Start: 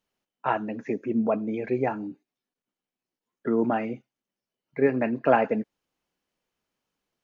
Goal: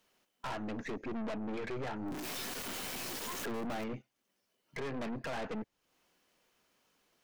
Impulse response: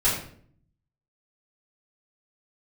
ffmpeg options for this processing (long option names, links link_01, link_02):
-filter_complex "[0:a]asettb=1/sr,asplit=3[link_01][link_02][link_03];[link_01]atrim=end=2.064[link_04];[link_02]atrim=start=2.06:end=3.84,asetpts=PTS-STARTPTS,afade=type=in:duration=0.004:curve=qsin,afade=type=out:start_time=1.776:duration=0.004:curve=qsin,aeval=exprs='val(0)+0.5*0.0266*sgn(val(0))':channel_layout=same[link_05];[link_03]atrim=start=3.836[link_06];[link_04][link_05]acrossfade=duration=0.004:curve1=hsin:curve2=qsin[link_07];[link_07][link_06]acrossfade=duration=0.004:curve1=qsin:curve2=hsin,lowshelf=frequency=240:gain=-8,bandreject=frequency=840:width=24,asplit=2[link_08][link_09];[link_09]alimiter=limit=-18dB:level=0:latency=1:release=202,volume=2.5dB[link_10];[link_08][link_10]amix=inputs=2:normalize=0,acrossover=split=130[link_11][link_12];[link_12]acompressor=threshold=-43dB:ratio=2[link_13];[link_11][link_13]amix=inputs=2:normalize=0,aeval=exprs='(tanh(126*val(0)+0.55)-tanh(0.55))/126':channel_layout=same,volume=5.5dB"